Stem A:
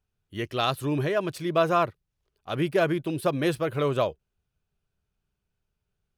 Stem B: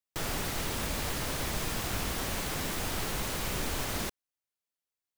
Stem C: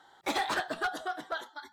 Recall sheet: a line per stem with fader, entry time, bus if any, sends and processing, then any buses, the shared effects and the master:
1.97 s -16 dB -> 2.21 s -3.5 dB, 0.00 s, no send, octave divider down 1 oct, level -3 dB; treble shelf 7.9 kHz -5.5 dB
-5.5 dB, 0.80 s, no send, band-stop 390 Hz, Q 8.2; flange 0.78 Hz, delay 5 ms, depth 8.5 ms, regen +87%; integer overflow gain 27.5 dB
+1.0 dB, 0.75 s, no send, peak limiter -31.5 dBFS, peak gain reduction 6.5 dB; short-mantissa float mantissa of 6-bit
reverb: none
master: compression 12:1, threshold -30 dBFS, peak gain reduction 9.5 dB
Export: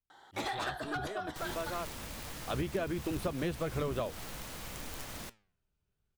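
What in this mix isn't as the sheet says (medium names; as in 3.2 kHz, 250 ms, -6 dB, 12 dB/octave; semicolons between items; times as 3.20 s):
stem B: entry 0.80 s -> 1.20 s; stem C: entry 0.75 s -> 0.10 s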